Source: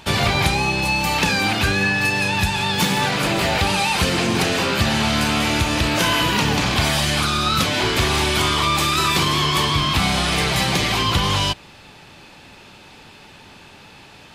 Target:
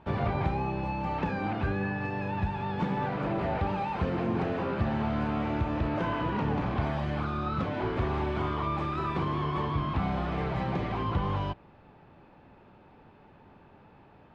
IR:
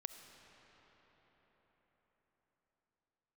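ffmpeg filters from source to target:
-af "lowpass=1100,volume=-8dB"

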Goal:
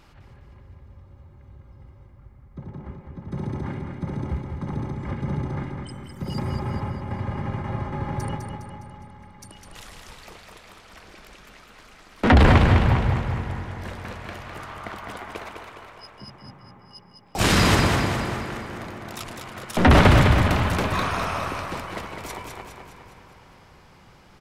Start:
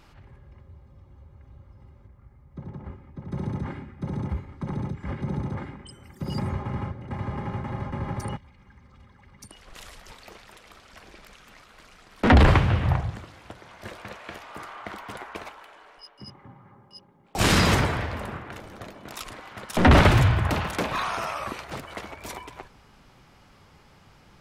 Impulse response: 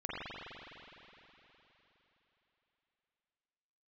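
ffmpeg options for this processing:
-filter_complex "[0:a]aecho=1:1:205|410|615|820|1025|1230|1435:0.531|0.281|0.149|0.079|0.0419|0.0222|0.0118,asplit=2[link_01][link_02];[1:a]atrim=start_sample=2205,asetrate=29988,aresample=44100[link_03];[link_02][link_03]afir=irnorm=-1:irlink=0,volume=-17.5dB[link_04];[link_01][link_04]amix=inputs=2:normalize=0"

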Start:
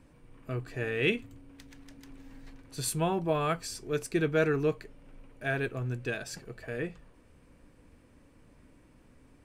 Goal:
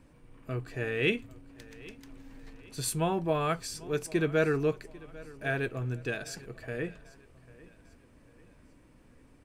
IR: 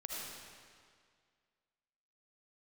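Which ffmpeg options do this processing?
-af "aecho=1:1:795|1590|2385:0.0891|0.0365|0.015"

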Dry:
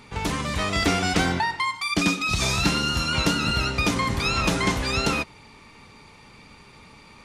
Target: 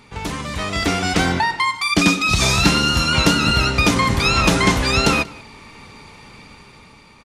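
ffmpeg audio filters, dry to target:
ffmpeg -i in.wav -filter_complex "[0:a]dynaudnorm=framelen=490:gausssize=5:maxgain=10dB,asplit=2[link_01][link_02];[link_02]adelay=186.6,volume=-22dB,highshelf=frequency=4000:gain=-4.2[link_03];[link_01][link_03]amix=inputs=2:normalize=0" out.wav

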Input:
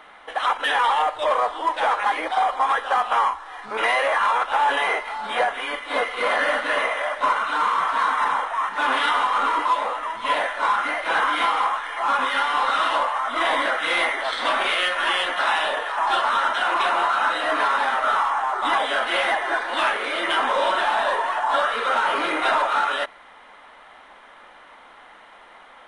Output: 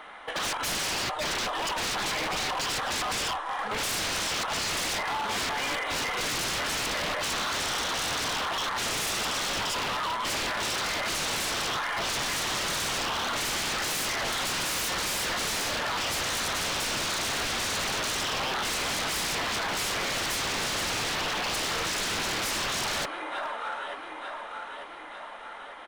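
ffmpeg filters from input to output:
ffmpeg -i in.wav -af "aecho=1:1:895|1790|2685|3580|4475:0.158|0.0888|0.0497|0.0278|0.0156,aeval=exprs='0.0473*(abs(mod(val(0)/0.0473+3,4)-2)-1)':channel_layout=same,volume=1.5dB" out.wav

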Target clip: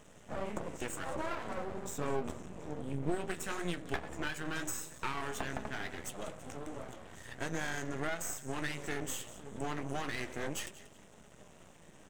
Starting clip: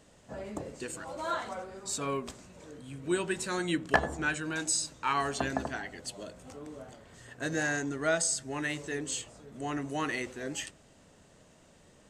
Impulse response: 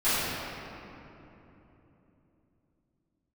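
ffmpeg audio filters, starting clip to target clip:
-filter_complex "[0:a]acompressor=threshold=-36dB:ratio=10,asuperstop=centerf=4500:order=4:qfactor=2.5,asplit=4[link_01][link_02][link_03][link_04];[link_02]adelay=185,afreqshift=78,volume=-17dB[link_05];[link_03]adelay=370,afreqshift=156,volume=-26.9dB[link_06];[link_04]adelay=555,afreqshift=234,volume=-36.8dB[link_07];[link_01][link_05][link_06][link_07]amix=inputs=4:normalize=0,flanger=delay=4.8:depth=8:regen=-54:speed=1.6:shape=sinusoidal,asettb=1/sr,asplit=3[link_08][link_09][link_10];[link_08]atrim=end=1.154[link_11];[link_09]atrim=start=1.15:end=3.25,asetpts=PTS-STARTPTS,afade=type=in:duration=0.004:curve=qsin,afade=type=out:start_time=2.096:duration=0.004:curve=qsin,tiltshelf=frequency=790:gain=5[link_12];[link_10]atrim=start=3.246[link_13];[link_11][link_12]acrossfade=duration=0.004:curve1=hsin:curve2=qsin[link_14];[link_14][link_13]acrossfade=duration=0.004:curve1=qsin:curve2=hsin,flanger=delay=4.7:depth=8.5:regen=79:speed=0.18:shape=sinusoidal,highshelf=frequency=11000:gain=-4,aeval=exprs='max(val(0),0)':channel_layout=same,volume=14.5dB"

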